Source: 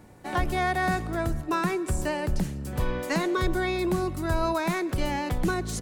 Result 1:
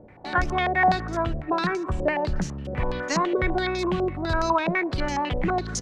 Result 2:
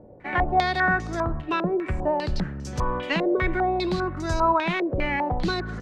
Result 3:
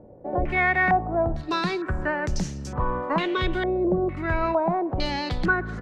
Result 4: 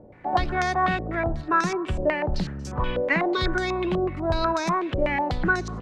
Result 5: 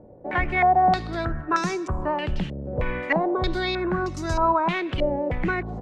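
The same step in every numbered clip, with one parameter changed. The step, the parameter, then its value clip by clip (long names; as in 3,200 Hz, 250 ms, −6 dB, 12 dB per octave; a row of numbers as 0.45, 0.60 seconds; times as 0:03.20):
low-pass on a step sequencer, speed: 12, 5, 2.2, 8.1, 3.2 Hertz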